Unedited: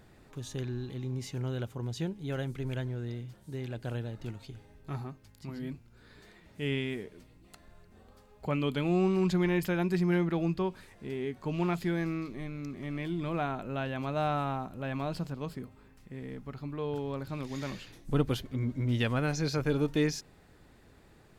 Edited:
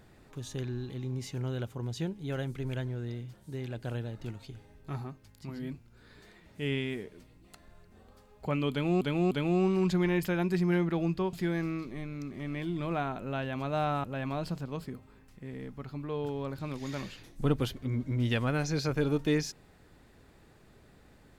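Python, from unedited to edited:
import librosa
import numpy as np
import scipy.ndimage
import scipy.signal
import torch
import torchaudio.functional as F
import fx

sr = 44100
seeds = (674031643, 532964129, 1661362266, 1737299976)

y = fx.edit(x, sr, fx.repeat(start_s=8.71, length_s=0.3, count=3),
    fx.cut(start_s=10.73, length_s=1.03),
    fx.cut(start_s=14.47, length_s=0.26), tone=tone)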